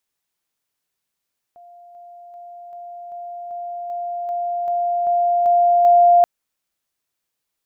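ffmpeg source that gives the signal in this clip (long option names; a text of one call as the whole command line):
ffmpeg -f lavfi -i "aevalsrc='pow(10,(-41.5+3*floor(t/0.39))/20)*sin(2*PI*699*t)':duration=4.68:sample_rate=44100" out.wav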